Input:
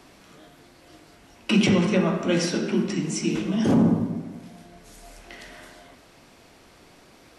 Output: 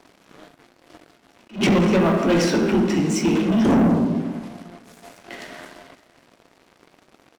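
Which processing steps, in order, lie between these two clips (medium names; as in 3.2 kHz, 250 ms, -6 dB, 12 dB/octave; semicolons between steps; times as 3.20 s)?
high-pass 170 Hz 12 dB/octave; treble shelf 2.9 kHz -9 dB; waveshaping leveller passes 3; on a send: delay 561 ms -22.5 dB; on the sum: attacks held to a fixed rise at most 230 dB/s; trim -1 dB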